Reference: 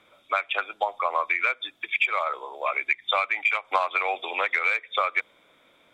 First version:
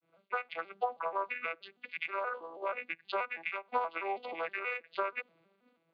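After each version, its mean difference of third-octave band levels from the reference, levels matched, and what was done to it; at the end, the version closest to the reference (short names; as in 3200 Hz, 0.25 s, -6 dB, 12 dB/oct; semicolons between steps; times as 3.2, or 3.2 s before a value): 5.0 dB: arpeggiated vocoder minor triad, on E3, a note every 0.16 s; expander -54 dBFS; high shelf 4600 Hz -11 dB; gain -8.5 dB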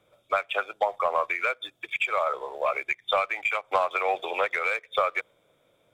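3.5 dB: graphic EQ 125/250/500/1000/2000/4000 Hz +8/-8/+4/-6/-9/-6 dB; sample leveller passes 1; dynamic EQ 1400 Hz, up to +4 dB, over -40 dBFS, Q 0.86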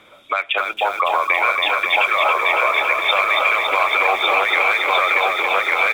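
10.0 dB: echo 1.152 s -5 dB; maximiser +18 dB; lo-fi delay 0.279 s, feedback 80%, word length 6-bit, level -4.5 dB; gain -7.5 dB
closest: second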